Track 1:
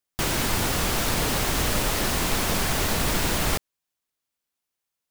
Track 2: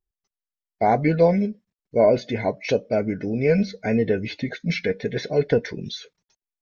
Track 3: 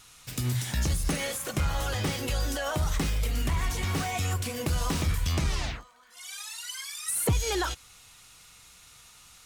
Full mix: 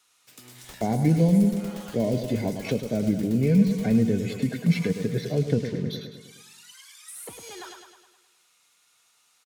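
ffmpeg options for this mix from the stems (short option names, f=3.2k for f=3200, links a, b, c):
-filter_complex "[0:a]aeval=exprs='val(0)*pow(10,-34*if(lt(mod(8.4*n/s,1),2*abs(8.4)/1000),1-mod(8.4*n/s,1)/(2*abs(8.4)/1000),(mod(8.4*n/s,1)-2*abs(8.4)/1000)/(1-2*abs(8.4)/1000))/20)':c=same,adelay=450,volume=-14.5dB[a];[1:a]highpass=140,lowshelf=f=480:g=12,adynamicsmooth=sensitivity=6.5:basefreq=3.3k,volume=-4dB,asplit=2[b][c];[c]volume=-9.5dB[d];[2:a]highpass=310,volume=-12dB,asplit=2[e][f];[f]volume=-6dB[g];[d][g]amix=inputs=2:normalize=0,aecho=0:1:104|208|312|416|520|624|728|832:1|0.55|0.303|0.166|0.0915|0.0503|0.0277|0.0152[h];[a][b][e][h]amix=inputs=4:normalize=0,acrossover=split=240|3000[i][j][k];[j]acompressor=threshold=-32dB:ratio=3[l];[i][l][k]amix=inputs=3:normalize=0"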